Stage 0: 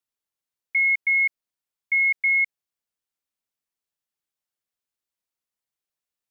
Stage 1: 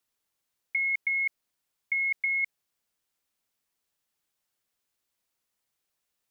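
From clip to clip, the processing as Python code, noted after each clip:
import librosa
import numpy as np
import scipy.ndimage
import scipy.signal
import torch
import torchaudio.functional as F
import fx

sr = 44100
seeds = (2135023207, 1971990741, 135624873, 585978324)

y = fx.over_compress(x, sr, threshold_db=-27.0, ratio=-1.0)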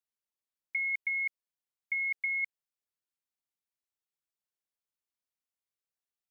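y = fx.upward_expand(x, sr, threshold_db=-49.0, expansion=1.5)
y = y * librosa.db_to_amplitude(-3.5)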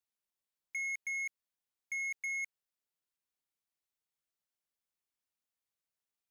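y = 10.0 ** (-34.5 / 20.0) * np.tanh(x / 10.0 ** (-34.5 / 20.0))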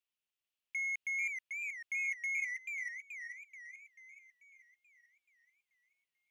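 y = fx.peak_eq(x, sr, hz=2800.0, db=13.0, octaves=0.76)
y = fx.echo_warbled(y, sr, ms=435, feedback_pct=53, rate_hz=2.8, cents=167, wet_db=-4.5)
y = y * librosa.db_to_amplitude(-6.0)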